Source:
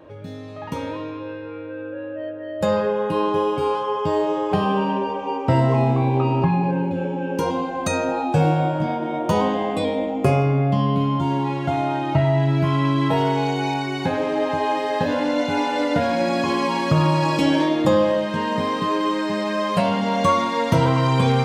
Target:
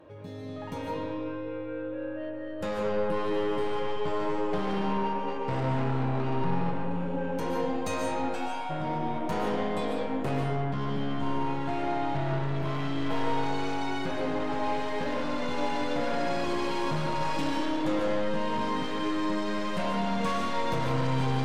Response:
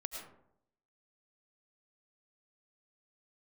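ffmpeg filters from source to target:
-filter_complex "[0:a]asplit=3[a][b][c];[a]afade=t=out:st=8.28:d=0.02[d];[b]highpass=f=850:w=0.5412,highpass=f=850:w=1.3066,afade=t=in:st=8.28:d=0.02,afade=t=out:st=8.69:d=0.02[e];[c]afade=t=in:st=8.69:d=0.02[f];[d][e][f]amix=inputs=3:normalize=0,aeval=exprs='(tanh(12.6*val(0)+0.15)-tanh(0.15))/12.6':c=same[g];[1:a]atrim=start_sample=2205,asetrate=32193,aresample=44100[h];[g][h]afir=irnorm=-1:irlink=0,volume=-5dB"

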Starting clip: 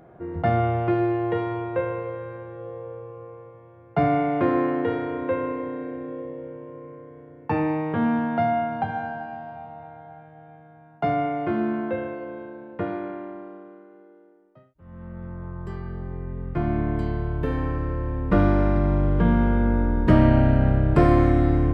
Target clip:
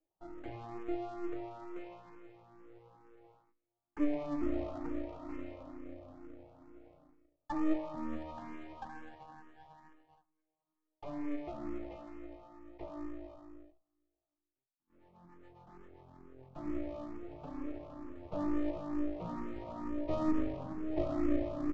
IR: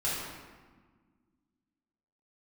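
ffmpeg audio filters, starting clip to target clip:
-filter_complex "[0:a]agate=range=-22dB:threshold=-42dB:ratio=16:detection=peak,aecho=1:1:2.3:0.48,acrossover=split=360|820[a][b][c];[c]asoftclip=type=hard:threshold=-35dB[d];[a][b][d]amix=inputs=3:normalize=0,asplit=3[e][f][g];[e]bandpass=f=300:t=q:w=8,volume=0dB[h];[f]bandpass=f=870:t=q:w=8,volume=-6dB[i];[g]bandpass=f=2.24k:t=q:w=8,volume=-9dB[j];[h][i][j]amix=inputs=3:normalize=0,flanger=delay=3.5:depth=4.6:regen=72:speed=1:shape=sinusoidal,aresample=16000,aeval=exprs='max(val(0),0)':c=same,aresample=44100,asplit=2[k][l];[l]afreqshift=2.2[m];[k][m]amix=inputs=2:normalize=1,volume=5.5dB"

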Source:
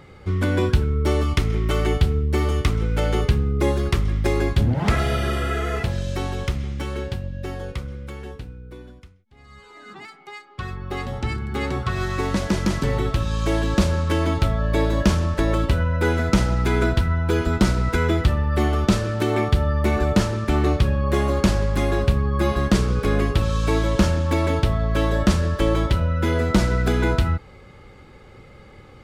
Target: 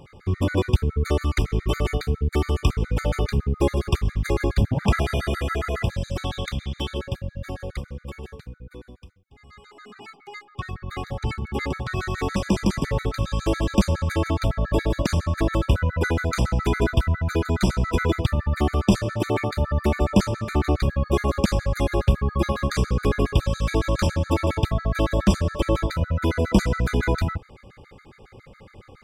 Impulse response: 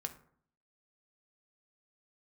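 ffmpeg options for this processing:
-filter_complex "[0:a]asettb=1/sr,asplit=3[a][b][c];[a]atrim=end=6.244[d];[b]atrim=start=6.24:end=6.98,asetpts=PTS-STARTPTS,afade=t=in:d=0.004:c=qsin,afade=t=out:st=0.736:d=0.004:c=qsin,equalizer=f=3.4k:t=o:w=0.34:g=13[e];[c]atrim=start=6.976[f];[d][e]acrossfade=d=0.004:c1=hsin:c2=qsin[g];[g][f]acrossfade=d=0.004:c1=qsin:c2=hsin,afftfilt=real='re*gt(sin(2*PI*7.2*pts/sr)*(1-2*mod(floor(b*sr/1024/1200),2)),0)':imag='im*gt(sin(2*PI*7.2*pts/sr)*(1-2*mod(floor(b*sr/1024/1200),2)),0)':win_size=1024:overlap=0.75,volume=1dB"

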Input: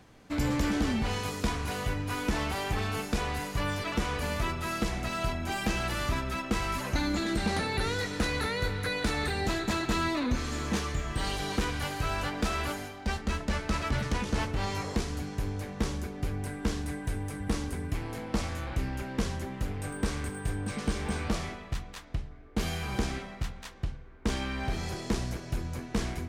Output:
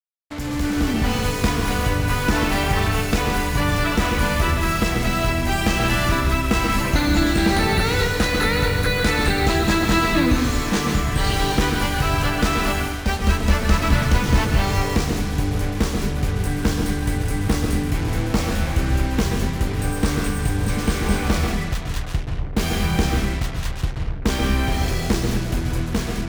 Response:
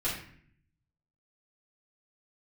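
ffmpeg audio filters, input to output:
-filter_complex "[0:a]dynaudnorm=f=350:g=5:m=10.5dB,asplit=2[a][b];[1:a]atrim=start_sample=2205,adelay=127[c];[b][c]afir=irnorm=-1:irlink=0,volume=-10dB[d];[a][d]amix=inputs=2:normalize=0,acrusher=bits=4:mix=0:aa=0.5,volume=-1.5dB"

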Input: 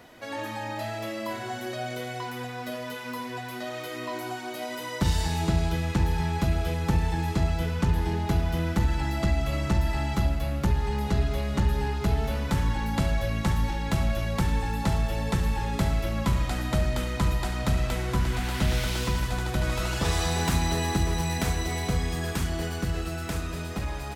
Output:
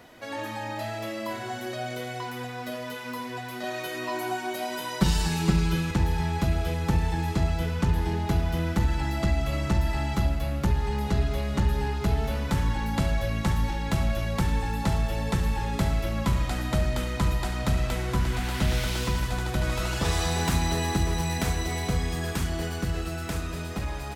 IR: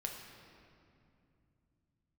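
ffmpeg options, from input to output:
-filter_complex "[0:a]asettb=1/sr,asplit=3[a][b][c];[a]atrim=end=3.634[d];[b]atrim=start=3.63:end=5.91,asetpts=PTS-STARTPTS,afade=t=in:d=0.004:c=qsin,afade=t=out:st=2.276:d=0.004:c=qsin,aecho=1:1:5.3:0.92,atrim=end_sample=100548[e];[c]atrim=start=5.906[f];[d][e]acrossfade=d=0.004:c1=hsin:c2=qsin[g];[g][f]acrossfade=d=0.004:c1=qsin:c2=hsin"

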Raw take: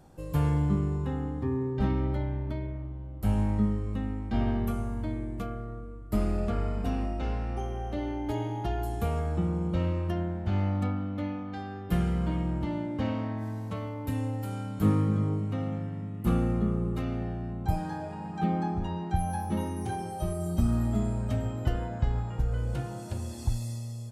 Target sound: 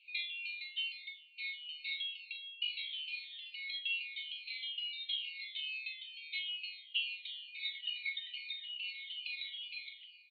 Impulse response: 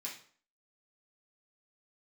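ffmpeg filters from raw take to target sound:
-af "afftfilt=real='re*pow(10,20/40*sin(2*PI*(1.2*log(max(b,1)*sr/1024/100)/log(2)-(-0.97)*(pts-256)/sr)))':imag='im*pow(10,20/40*sin(2*PI*(1.2*log(max(b,1)*sr/1024/100)/log(2)-(-0.97)*(pts-256)/sr)))':win_size=1024:overlap=0.75,aecho=1:1:97:0.282,asetrate=103194,aresample=44100,asuperpass=centerf=3100:order=20:qfactor=1.5,volume=3dB"

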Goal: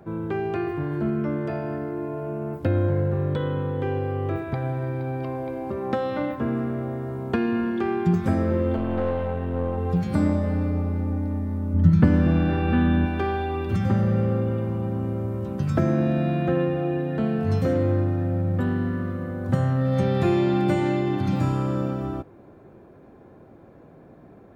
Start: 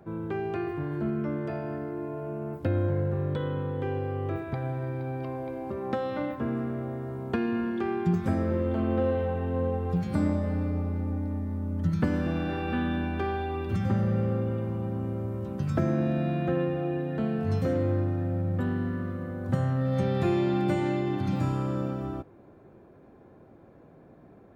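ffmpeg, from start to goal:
-filter_complex "[0:a]asettb=1/sr,asplit=3[a][b][c];[a]atrim=end=8.764[d];[b]atrim=start=8.76:end=9.78,asetpts=PTS-STARTPTS,afade=t=in:d=0.004:c=qsin,afade=t=out:st=1.016:d=0.004:c=qsin,aeval=exprs='(tanh(14.1*val(0)+0.55)-tanh(0.55))/14.1':c=same[e];[c]atrim=start=9.776[f];[d][e]acrossfade=d=0.004:c1=hsin:c2=qsin[g];[g][f]acrossfade=d=0.004:c1=qsin:c2=hsin,asettb=1/sr,asplit=3[h][i][j];[h]atrim=end=11.744[k];[i]atrim=start=11.74:end=13.06,asetpts=PTS-STARTPTS,afade=t=in:d=0.004:c=qsin,afade=t=out:st=1.316:d=0.004:c=qsin,bass=f=250:g=7,treble=f=4k:g=-6[l];[j]atrim=start=13.056[m];[k][l]acrossfade=d=0.004:c1=hsin:c2=qsin[n];[n][m]acrossfade=d=0.004:c1=qsin:c2=hsin,volume=4.5dB"

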